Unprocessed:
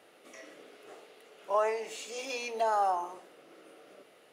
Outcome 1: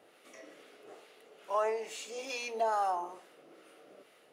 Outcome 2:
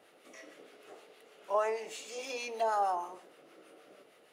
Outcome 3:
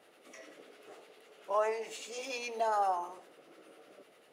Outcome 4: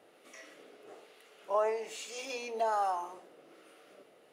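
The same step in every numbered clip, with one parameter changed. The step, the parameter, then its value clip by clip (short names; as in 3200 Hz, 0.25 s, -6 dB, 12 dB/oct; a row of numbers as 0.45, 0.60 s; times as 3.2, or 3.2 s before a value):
harmonic tremolo, rate: 2.3, 6.4, 10, 1.2 Hz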